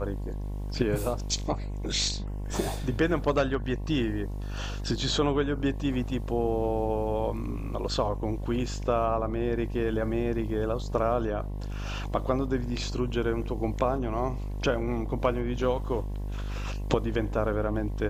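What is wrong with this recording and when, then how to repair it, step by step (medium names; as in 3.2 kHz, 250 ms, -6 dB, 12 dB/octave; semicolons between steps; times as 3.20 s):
buzz 50 Hz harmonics 22 -33 dBFS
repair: de-hum 50 Hz, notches 22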